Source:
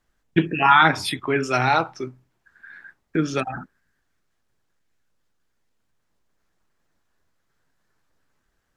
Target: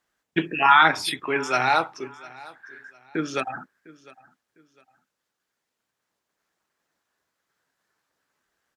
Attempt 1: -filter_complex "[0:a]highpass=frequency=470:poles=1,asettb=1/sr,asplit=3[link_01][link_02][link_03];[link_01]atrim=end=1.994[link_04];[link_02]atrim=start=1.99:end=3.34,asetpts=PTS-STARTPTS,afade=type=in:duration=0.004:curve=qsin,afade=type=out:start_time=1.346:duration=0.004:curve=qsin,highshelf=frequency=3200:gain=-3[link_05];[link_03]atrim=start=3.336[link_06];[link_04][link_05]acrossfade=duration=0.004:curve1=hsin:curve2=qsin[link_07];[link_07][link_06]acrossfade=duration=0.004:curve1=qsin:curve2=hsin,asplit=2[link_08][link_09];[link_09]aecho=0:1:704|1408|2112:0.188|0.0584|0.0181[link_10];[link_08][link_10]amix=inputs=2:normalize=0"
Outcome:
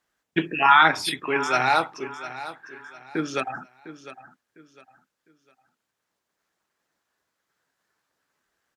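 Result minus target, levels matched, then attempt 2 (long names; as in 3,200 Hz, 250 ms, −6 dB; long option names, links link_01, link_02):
echo-to-direct +7 dB
-filter_complex "[0:a]highpass=frequency=470:poles=1,asettb=1/sr,asplit=3[link_01][link_02][link_03];[link_01]atrim=end=1.994[link_04];[link_02]atrim=start=1.99:end=3.34,asetpts=PTS-STARTPTS,afade=type=in:duration=0.004:curve=qsin,afade=type=out:start_time=1.346:duration=0.004:curve=qsin,highshelf=frequency=3200:gain=-3[link_05];[link_03]atrim=start=3.336[link_06];[link_04][link_05]acrossfade=duration=0.004:curve1=hsin:curve2=qsin[link_07];[link_07][link_06]acrossfade=duration=0.004:curve1=qsin:curve2=hsin,asplit=2[link_08][link_09];[link_09]aecho=0:1:704|1408:0.0841|0.0261[link_10];[link_08][link_10]amix=inputs=2:normalize=0"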